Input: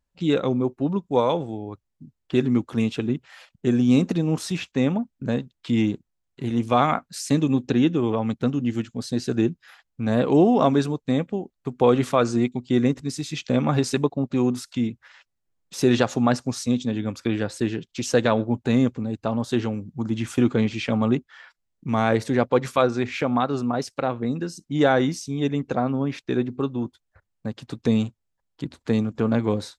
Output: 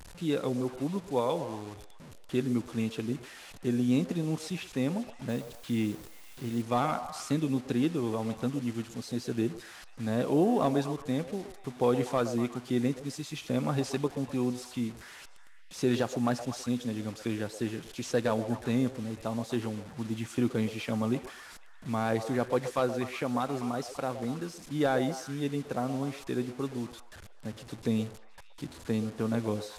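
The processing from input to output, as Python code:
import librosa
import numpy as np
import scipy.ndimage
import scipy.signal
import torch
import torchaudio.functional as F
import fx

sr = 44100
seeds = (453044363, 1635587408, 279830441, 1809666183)

y = fx.delta_mod(x, sr, bps=64000, step_db=-34.0)
y = fx.quant_dither(y, sr, seeds[0], bits=8, dither='triangular', at=(5.29, 6.62))
y = fx.echo_stepped(y, sr, ms=122, hz=570.0, octaves=0.7, feedback_pct=70, wet_db=-8)
y = F.gain(torch.from_numpy(y), -8.5).numpy()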